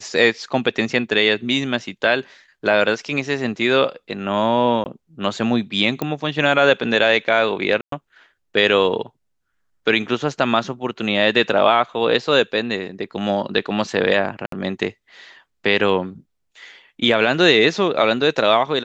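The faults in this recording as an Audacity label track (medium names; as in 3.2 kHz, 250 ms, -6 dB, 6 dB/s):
4.840000	4.860000	dropout 19 ms
6.020000	6.020000	pop -10 dBFS
7.810000	7.920000	dropout 113 ms
14.460000	14.520000	dropout 63 ms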